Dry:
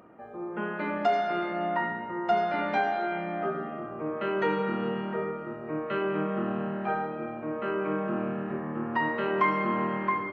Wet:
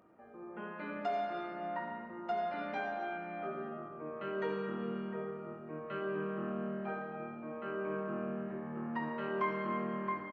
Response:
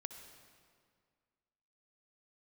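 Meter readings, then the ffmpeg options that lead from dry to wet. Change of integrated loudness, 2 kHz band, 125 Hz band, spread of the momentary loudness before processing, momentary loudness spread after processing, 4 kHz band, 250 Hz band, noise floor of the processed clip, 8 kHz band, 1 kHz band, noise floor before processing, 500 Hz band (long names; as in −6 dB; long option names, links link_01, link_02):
−9.0 dB, −10.0 dB, −8.5 dB, 8 LU, 8 LU, −11.0 dB, −8.5 dB, −49 dBFS, can't be measured, −10.0 dB, −39 dBFS, −8.5 dB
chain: -filter_complex "[0:a]asplit=2[link_01][link_02];[link_02]adelay=21,volume=-9dB[link_03];[link_01][link_03]amix=inputs=2:normalize=0[link_04];[1:a]atrim=start_sample=2205,afade=type=out:start_time=0.43:duration=0.01,atrim=end_sample=19404[link_05];[link_04][link_05]afir=irnorm=-1:irlink=0,volume=-7dB"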